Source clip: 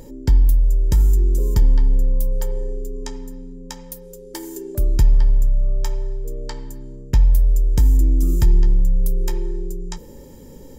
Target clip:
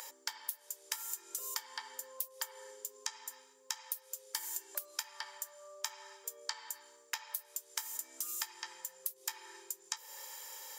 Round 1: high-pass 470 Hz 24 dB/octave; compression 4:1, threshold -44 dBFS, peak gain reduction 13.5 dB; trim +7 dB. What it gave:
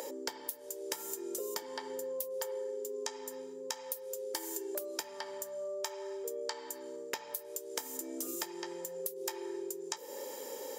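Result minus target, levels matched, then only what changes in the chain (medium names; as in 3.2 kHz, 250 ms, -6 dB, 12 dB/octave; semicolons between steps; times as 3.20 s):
500 Hz band +17.0 dB
change: high-pass 1 kHz 24 dB/octave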